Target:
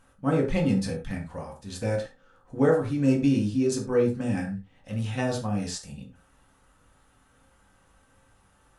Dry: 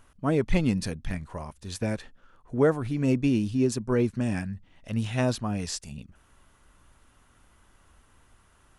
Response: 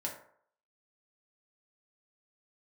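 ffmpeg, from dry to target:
-filter_complex "[0:a]asettb=1/sr,asplit=3[link_01][link_02][link_03];[link_01]atrim=end=1.834[link_04];[link_02]atrim=start=1.83:end=3.92,asetpts=PTS-STARTPTS,afade=type=in:duration=0.004:curve=qsin,afade=type=out:start_time=2.086:duration=0.004:curve=qsin,equalizer=frequency=6000:width_type=o:width=1.6:gain=4[link_05];[link_03]atrim=start=3.916[link_06];[link_04][link_05]acrossfade=duration=0.004:curve1=hsin:curve2=qsin[link_07];[link_07][link_06]acrossfade=duration=0.004:curve1=qsin:curve2=hsin[link_08];[1:a]atrim=start_sample=2205,afade=type=out:start_time=0.15:duration=0.01,atrim=end_sample=7056,asetrate=38808,aresample=44100[link_09];[link_08][link_09]afir=irnorm=-1:irlink=0,volume=-2dB"

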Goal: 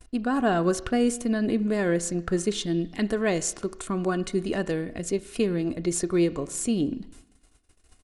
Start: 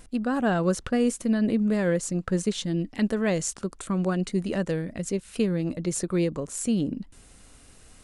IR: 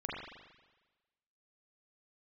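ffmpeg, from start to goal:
-filter_complex "[0:a]agate=range=-30dB:threshold=-48dB:ratio=16:detection=peak,aecho=1:1:2.8:0.39,asplit=2[link_01][link_02];[1:a]atrim=start_sample=2205,asetrate=57330,aresample=44100[link_03];[link_02][link_03]afir=irnorm=-1:irlink=0,volume=-14dB[link_04];[link_01][link_04]amix=inputs=2:normalize=0"

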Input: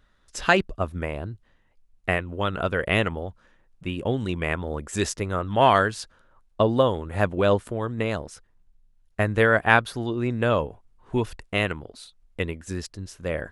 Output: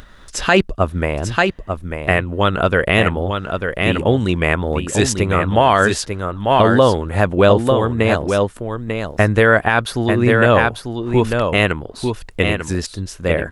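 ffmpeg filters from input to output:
ffmpeg -i in.wav -filter_complex "[0:a]acompressor=mode=upward:threshold=-41dB:ratio=2.5,asplit=2[link_01][link_02];[link_02]aecho=0:1:894:0.473[link_03];[link_01][link_03]amix=inputs=2:normalize=0,alimiter=level_in=11dB:limit=-1dB:release=50:level=0:latency=1,volume=-1dB" out.wav

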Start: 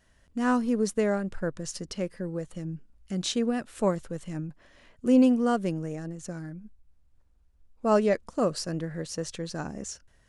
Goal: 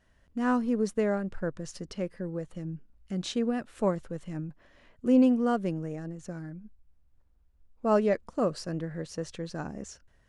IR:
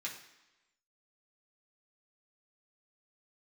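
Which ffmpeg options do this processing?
-af "highshelf=frequency=4500:gain=-9.5,volume=-1.5dB"

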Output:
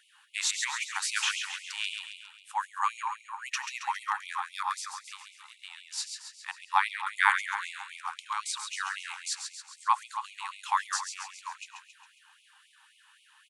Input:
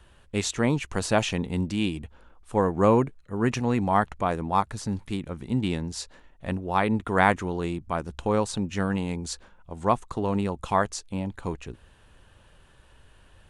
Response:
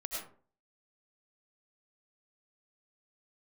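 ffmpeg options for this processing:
-filter_complex "[0:a]asettb=1/sr,asplit=3[link_01][link_02][link_03];[link_01]atrim=end=4.774[link_04];[link_02]atrim=start=4.77:end=5.98,asetpts=PTS-STARTPTS,afade=type=in:duration=0.004:curve=qsin,afade=type=out:start_time=1.206:duration=0.004:curve=qsin,acrossover=split=160[link_05][link_06];[link_06]acompressor=threshold=-35dB:ratio=6[link_07];[link_05][link_07]amix=inputs=2:normalize=0[link_08];[link_03]atrim=start=5.976[link_09];[link_04][link_08]acrossfade=duration=0.004:curve1=hsin:curve2=qsin[link_10];[link_10][link_09]acrossfade=duration=0.004:curve1=qsin:curve2=hsin,aecho=1:1:136|272|408|544|680|816|952:0.473|0.256|0.138|0.0745|0.0402|0.0217|0.0117,asplit=2[link_11][link_12];[1:a]atrim=start_sample=2205[link_13];[link_12][link_13]afir=irnorm=-1:irlink=0,volume=-12dB[link_14];[link_11][link_14]amix=inputs=2:normalize=0,afftfilt=real='re*gte(b*sr/1024,760*pow(2100/760,0.5+0.5*sin(2*PI*3.8*pts/sr)))':imag='im*gte(b*sr/1024,760*pow(2100/760,0.5+0.5*sin(2*PI*3.8*pts/sr)))':win_size=1024:overlap=0.75"

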